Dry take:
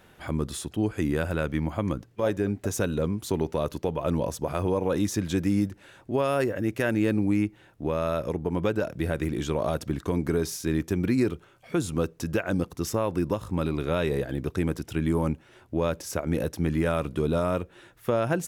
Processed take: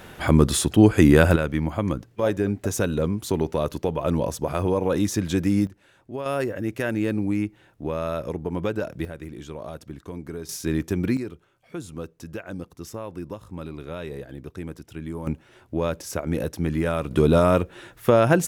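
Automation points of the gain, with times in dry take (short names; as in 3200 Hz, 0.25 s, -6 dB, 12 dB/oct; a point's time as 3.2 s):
+12 dB
from 1.36 s +3 dB
from 5.67 s -6.5 dB
from 6.26 s -0.5 dB
from 9.05 s -9 dB
from 10.49 s +1.5 dB
from 11.17 s -8 dB
from 15.27 s +1 dB
from 17.11 s +8 dB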